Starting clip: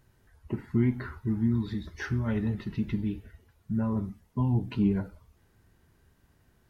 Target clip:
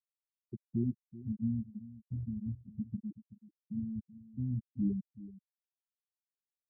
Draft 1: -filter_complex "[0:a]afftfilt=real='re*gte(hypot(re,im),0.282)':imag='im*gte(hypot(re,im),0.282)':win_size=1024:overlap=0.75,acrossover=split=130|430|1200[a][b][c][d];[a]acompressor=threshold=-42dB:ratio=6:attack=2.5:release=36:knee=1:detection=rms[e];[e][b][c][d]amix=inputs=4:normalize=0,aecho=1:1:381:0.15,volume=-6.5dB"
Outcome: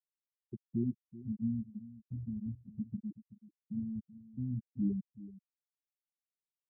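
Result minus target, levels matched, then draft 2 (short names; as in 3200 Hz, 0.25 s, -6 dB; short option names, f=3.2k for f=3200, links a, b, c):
compressor: peak gain reduction +7.5 dB
-filter_complex "[0:a]afftfilt=real='re*gte(hypot(re,im),0.282)':imag='im*gte(hypot(re,im),0.282)':win_size=1024:overlap=0.75,acrossover=split=130|430|1200[a][b][c][d];[a]acompressor=threshold=-33dB:ratio=6:attack=2.5:release=36:knee=1:detection=rms[e];[e][b][c][d]amix=inputs=4:normalize=0,aecho=1:1:381:0.15,volume=-6.5dB"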